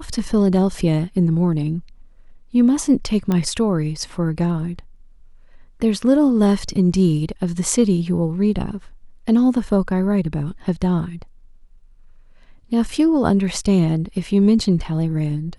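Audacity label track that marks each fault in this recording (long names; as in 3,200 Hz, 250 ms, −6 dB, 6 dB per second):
3.320000	3.320000	click −10 dBFS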